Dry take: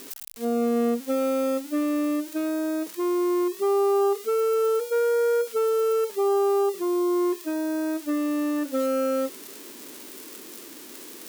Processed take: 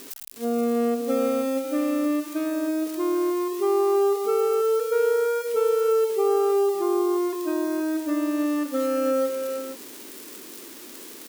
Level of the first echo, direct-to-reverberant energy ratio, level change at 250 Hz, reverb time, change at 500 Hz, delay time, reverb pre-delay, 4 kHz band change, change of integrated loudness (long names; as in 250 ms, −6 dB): −11.5 dB, no reverb audible, +0.5 dB, no reverb audible, +1.0 dB, 321 ms, no reverb audible, +0.5 dB, +1.0 dB